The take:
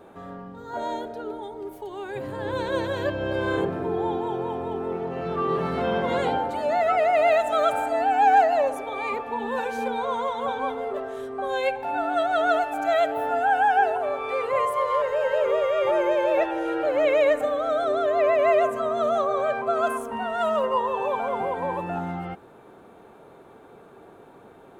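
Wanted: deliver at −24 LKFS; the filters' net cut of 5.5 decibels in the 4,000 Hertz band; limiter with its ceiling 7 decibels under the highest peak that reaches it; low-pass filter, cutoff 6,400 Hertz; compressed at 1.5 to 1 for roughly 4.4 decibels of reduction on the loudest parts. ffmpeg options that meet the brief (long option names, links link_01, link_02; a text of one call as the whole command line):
ffmpeg -i in.wav -af "lowpass=6400,equalizer=frequency=4000:width_type=o:gain=-7,acompressor=threshold=-26dB:ratio=1.5,volume=4.5dB,alimiter=limit=-15dB:level=0:latency=1" out.wav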